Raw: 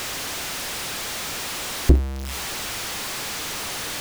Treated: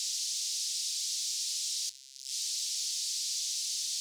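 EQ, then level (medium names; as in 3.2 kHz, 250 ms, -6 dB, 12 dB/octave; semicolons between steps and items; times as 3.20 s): inverse Chebyshev high-pass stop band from 830 Hz, stop band 80 dB; distance through air 85 m; +7.5 dB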